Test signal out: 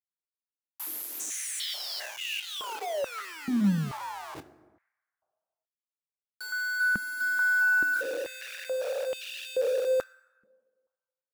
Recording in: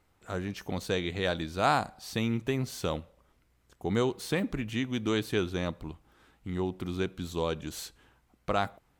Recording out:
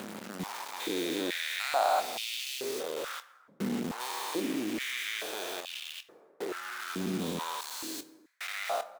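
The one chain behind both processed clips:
spectrum averaged block by block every 400 ms
notch filter 5,800 Hz, Q 24
dynamic equaliser 4,900 Hz, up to +6 dB, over −56 dBFS, Q 1.1
in parallel at 0 dB: downward compressor 16 to 1, threshold −45 dBFS
on the sum: high-shelf EQ 6,700 Hz +8.5 dB
bit reduction 6 bits
double-tracking delay 25 ms −13.5 dB
dense smooth reverb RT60 1.6 s, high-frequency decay 0.45×, pre-delay 0 ms, DRR 13.5 dB
high-pass on a step sequencer 2.3 Hz 210–2,900 Hz
level −4 dB

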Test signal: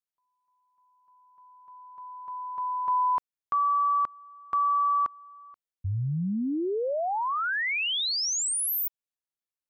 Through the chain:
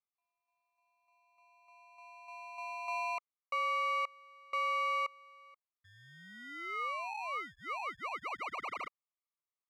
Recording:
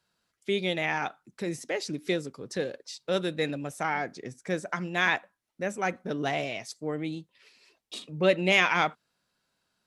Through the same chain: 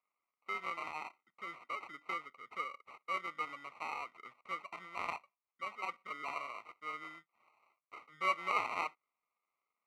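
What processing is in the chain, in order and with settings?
decimation without filtering 26×
pair of resonant band-passes 1,600 Hz, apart 0.78 octaves

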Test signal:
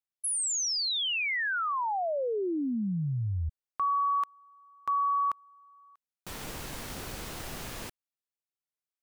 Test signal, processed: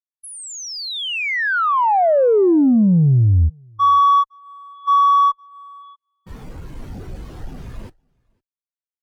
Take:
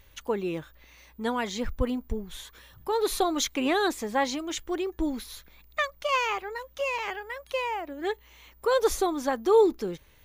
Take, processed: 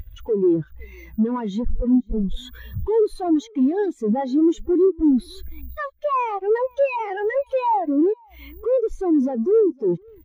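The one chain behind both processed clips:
downward compressor 16 to 1, threshold −39 dBFS
fuzz pedal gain 55 dB, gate −58 dBFS
on a send: single-tap delay 510 ms −12.5 dB
on the sum: every bin expanded away from the loudest bin 2.5 to 1
level −2 dB

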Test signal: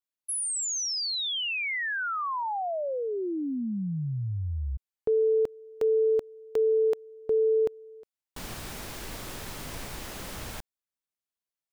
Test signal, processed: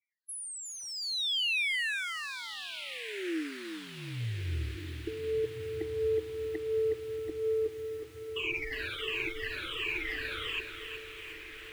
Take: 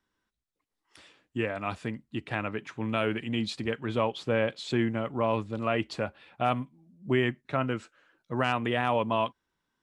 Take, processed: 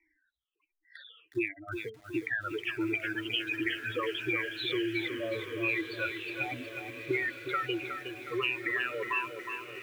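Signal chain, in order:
rippled gain that drifts along the octave scale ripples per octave 0.72, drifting −1.4 Hz, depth 22 dB
tilt shelving filter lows −5 dB, about 1,300 Hz
gate on every frequency bin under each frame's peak −10 dB strong
drawn EQ curve 120 Hz 0 dB, 210 Hz −25 dB, 320 Hz +13 dB, 680 Hz −14 dB, 2,400 Hz +15 dB, 6,100 Hz −21 dB
downward compressor 8 to 1, threshold −25 dBFS
on a send: feedback delay with all-pass diffusion 1,444 ms, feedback 50%, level −11 dB
on the sum: feedback echo at a low word length 365 ms, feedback 55%, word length 8 bits, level −7.5 dB
level −4 dB

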